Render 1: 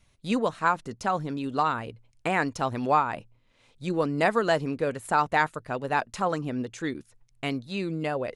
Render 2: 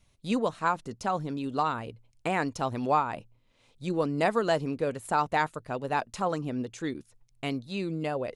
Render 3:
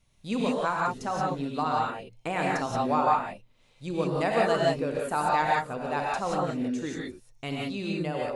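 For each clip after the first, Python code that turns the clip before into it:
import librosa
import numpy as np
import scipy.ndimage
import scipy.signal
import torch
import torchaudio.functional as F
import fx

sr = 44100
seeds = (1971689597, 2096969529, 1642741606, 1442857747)

y1 = fx.peak_eq(x, sr, hz=1700.0, db=-4.0, octaves=1.0)
y1 = y1 * 10.0 ** (-1.5 / 20.0)
y2 = fx.rev_gated(y1, sr, seeds[0], gate_ms=200, shape='rising', drr_db=-3.5)
y2 = y2 * 10.0 ** (-3.0 / 20.0)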